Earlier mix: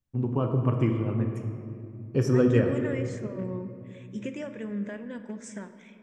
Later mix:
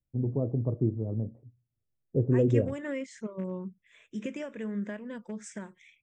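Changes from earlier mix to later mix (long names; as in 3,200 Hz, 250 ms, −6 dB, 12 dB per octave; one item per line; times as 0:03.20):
first voice: add Chebyshev low-pass filter 600 Hz, order 3
reverb: off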